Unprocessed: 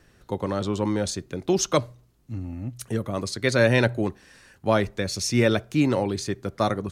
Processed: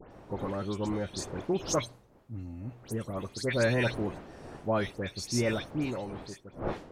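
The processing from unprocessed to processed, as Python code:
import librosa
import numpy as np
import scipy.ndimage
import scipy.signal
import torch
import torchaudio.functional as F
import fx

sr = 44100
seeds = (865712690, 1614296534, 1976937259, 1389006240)

y = fx.fade_out_tail(x, sr, length_s=1.67)
y = fx.dmg_wind(y, sr, seeds[0], corner_hz=570.0, level_db=-37.0)
y = fx.dispersion(y, sr, late='highs', ms=117.0, hz=2700.0)
y = F.gain(torch.from_numpy(y), -7.5).numpy()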